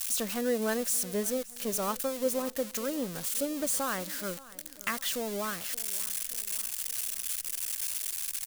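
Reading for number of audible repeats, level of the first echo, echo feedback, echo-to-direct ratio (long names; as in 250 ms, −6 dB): 3, −19.5 dB, 52%, −18.0 dB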